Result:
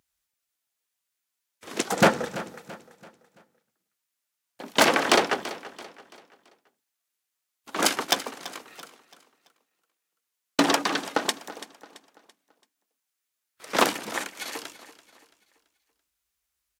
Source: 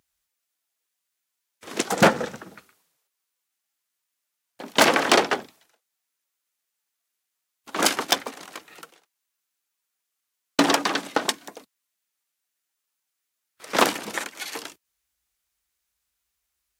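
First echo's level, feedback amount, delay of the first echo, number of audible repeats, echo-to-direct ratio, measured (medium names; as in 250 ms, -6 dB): -16.0 dB, 40%, 335 ms, 3, -15.5 dB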